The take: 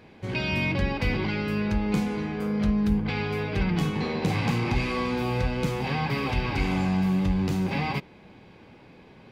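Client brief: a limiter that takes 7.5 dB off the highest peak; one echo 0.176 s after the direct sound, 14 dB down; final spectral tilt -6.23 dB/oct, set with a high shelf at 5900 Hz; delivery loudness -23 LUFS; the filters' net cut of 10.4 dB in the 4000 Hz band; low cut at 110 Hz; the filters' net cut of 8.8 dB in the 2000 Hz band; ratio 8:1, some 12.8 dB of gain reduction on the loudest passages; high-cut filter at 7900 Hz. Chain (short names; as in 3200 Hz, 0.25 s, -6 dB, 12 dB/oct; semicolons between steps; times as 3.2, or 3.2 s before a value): HPF 110 Hz; LPF 7900 Hz; bell 2000 Hz -7.5 dB; bell 4000 Hz -8.5 dB; high shelf 5900 Hz -7 dB; compressor 8:1, threshold -35 dBFS; limiter -32.5 dBFS; echo 0.176 s -14 dB; gain +17.5 dB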